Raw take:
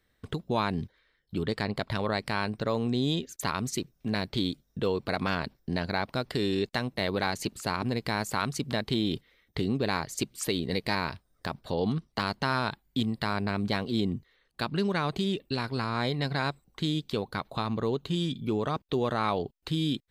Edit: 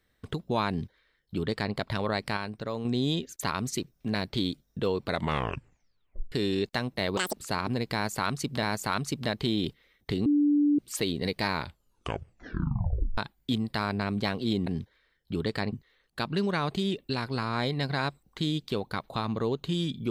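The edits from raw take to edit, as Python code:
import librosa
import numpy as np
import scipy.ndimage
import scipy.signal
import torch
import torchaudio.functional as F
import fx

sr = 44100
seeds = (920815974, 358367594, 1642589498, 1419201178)

y = fx.edit(x, sr, fx.duplicate(start_s=0.69, length_s=1.06, to_s=14.14),
    fx.clip_gain(start_s=2.37, length_s=0.48, db=-5.0),
    fx.tape_stop(start_s=5.06, length_s=1.26),
    fx.speed_span(start_s=7.17, length_s=0.32, speed=1.93),
    fx.repeat(start_s=8.1, length_s=0.68, count=2),
    fx.bleep(start_s=9.73, length_s=0.53, hz=292.0, db=-19.5),
    fx.tape_stop(start_s=11.0, length_s=1.65), tone=tone)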